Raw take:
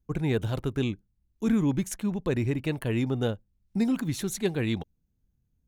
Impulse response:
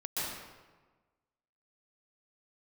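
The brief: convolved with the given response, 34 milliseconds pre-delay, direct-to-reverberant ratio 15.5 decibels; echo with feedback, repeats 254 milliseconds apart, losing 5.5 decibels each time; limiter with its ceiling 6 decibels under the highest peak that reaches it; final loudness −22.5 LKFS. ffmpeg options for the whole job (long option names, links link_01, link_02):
-filter_complex "[0:a]alimiter=limit=-20dB:level=0:latency=1,aecho=1:1:254|508|762|1016|1270|1524|1778:0.531|0.281|0.149|0.079|0.0419|0.0222|0.0118,asplit=2[link_01][link_02];[1:a]atrim=start_sample=2205,adelay=34[link_03];[link_02][link_03]afir=irnorm=-1:irlink=0,volume=-20.5dB[link_04];[link_01][link_04]amix=inputs=2:normalize=0,volume=7.5dB"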